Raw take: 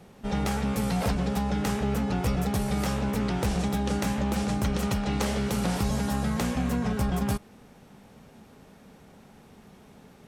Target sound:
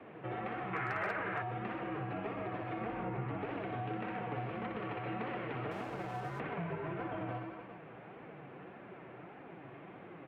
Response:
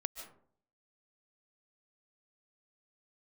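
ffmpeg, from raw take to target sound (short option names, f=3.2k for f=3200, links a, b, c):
-filter_complex "[0:a]asettb=1/sr,asplit=3[a][b][c];[a]atrim=end=2.814[d];[b]atrim=start=2.81:end=3.38,asetpts=PTS-STARTPTS,afade=t=in:d=0.004:c=qsin,afade=t=out:st=0.566:d=0.004:c=qsin,aemphasis=mode=reproduction:type=bsi[e];[c]atrim=start=3.376[f];[d][e]acrossfade=d=0.004:c1=hsin:c2=qsin[g];[g][f]acrossfade=d=0.004:c1=qsin:c2=hsin,aecho=1:1:60|129|208.4|299.6|404.5:0.631|0.398|0.251|0.158|0.1,highpass=f=280:t=q:w=0.5412,highpass=f=280:t=q:w=1.307,lowpass=f=2.7k:t=q:w=0.5176,lowpass=f=2.7k:t=q:w=0.7071,lowpass=f=2.7k:t=q:w=1.932,afreqshift=-81,asplit=2[h][i];[i]alimiter=level_in=1.5dB:limit=-24dB:level=0:latency=1:release=358,volume=-1.5dB,volume=-1dB[j];[h][j]amix=inputs=2:normalize=0,asettb=1/sr,asplit=3[k][l][m];[k]atrim=end=0.734[n];[l]atrim=start=0.73:end=1.42,asetpts=PTS-STARTPTS,afade=t=in:d=0.004:c=qsin,afade=t=out:st=0.686:d=0.004:c=qsin,equalizer=f=1.6k:w=1.1:g=15[o];[m]atrim=start=1.416[p];[n][o]acrossfade=d=0.004:c1=hsin:c2=qsin[q];[q][p]acrossfade=d=0.004:c1=qsin:c2=hsin,acrossover=split=640[r][s];[s]volume=14dB,asoftclip=hard,volume=-14dB[t];[r][t]amix=inputs=2:normalize=0,flanger=delay=3.2:depth=5.2:regen=42:speed=1.7:shape=triangular,acompressor=threshold=-47dB:ratio=2,asettb=1/sr,asplit=3[u][v][w];[u]atrim=end=5.714[x];[v]atrim=start=5.71:end=6.4,asetpts=PTS-STARTPTS,afade=t=in:d=0.004:c=qsin,afade=t=out:st=0.686:d=0.004:c=qsin,aeval=exprs='sgn(val(0))*max(abs(val(0))-0.0015,0)':c=same[y];[w]atrim=start=6.396[z];[x][y]acrossfade=d=0.004:c1=hsin:c2=qsin[aa];[aa][z]acrossfade=d=0.004:c1=qsin:c2=hsin,volume=2dB"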